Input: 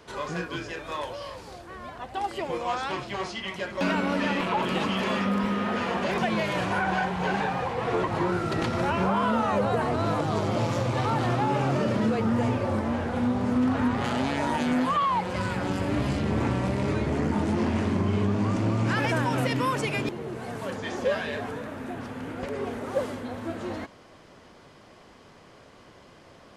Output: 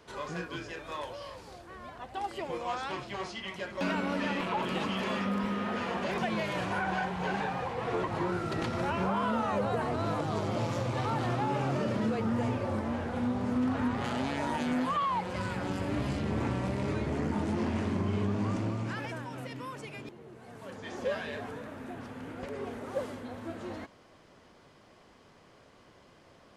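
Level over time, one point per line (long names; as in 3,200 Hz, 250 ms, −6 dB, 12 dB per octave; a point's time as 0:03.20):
0:18.54 −5.5 dB
0:19.25 −15 dB
0:20.41 −15 dB
0:21.04 −6.5 dB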